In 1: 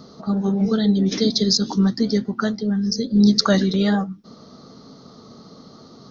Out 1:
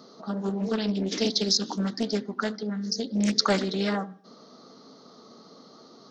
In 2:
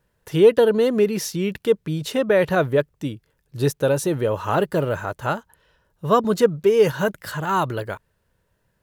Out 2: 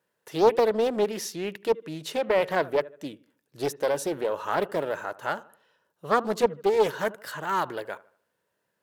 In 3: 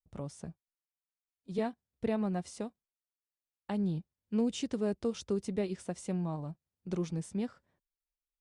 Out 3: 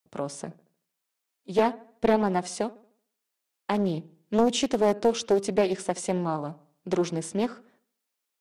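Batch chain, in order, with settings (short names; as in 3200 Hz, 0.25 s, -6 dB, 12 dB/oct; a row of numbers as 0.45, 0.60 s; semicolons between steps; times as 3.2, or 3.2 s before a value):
HPF 280 Hz 12 dB/oct; dark delay 76 ms, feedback 39%, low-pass 2100 Hz, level -19.5 dB; Doppler distortion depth 0.44 ms; match loudness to -27 LUFS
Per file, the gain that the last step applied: -4.0, -5.0, +13.0 dB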